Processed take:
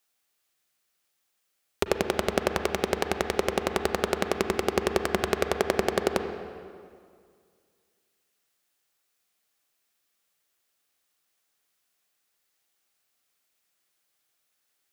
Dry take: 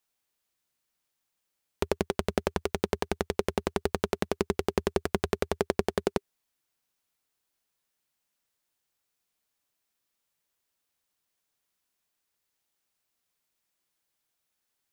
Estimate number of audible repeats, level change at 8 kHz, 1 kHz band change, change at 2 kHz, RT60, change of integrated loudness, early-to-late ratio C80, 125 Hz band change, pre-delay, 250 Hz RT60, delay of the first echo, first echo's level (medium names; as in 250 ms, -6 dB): no echo, +5.5 dB, +5.0 dB, +6.5 dB, 2.1 s, +3.0 dB, 8.0 dB, -1.0 dB, 36 ms, 2.2 s, no echo, no echo